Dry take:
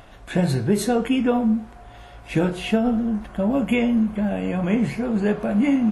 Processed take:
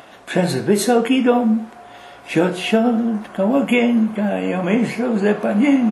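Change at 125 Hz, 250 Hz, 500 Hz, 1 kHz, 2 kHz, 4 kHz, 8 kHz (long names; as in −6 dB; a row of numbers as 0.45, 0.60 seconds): 0.0 dB, +3.5 dB, +6.5 dB, +6.5 dB, +6.5 dB, +6.5 dB, can't be measured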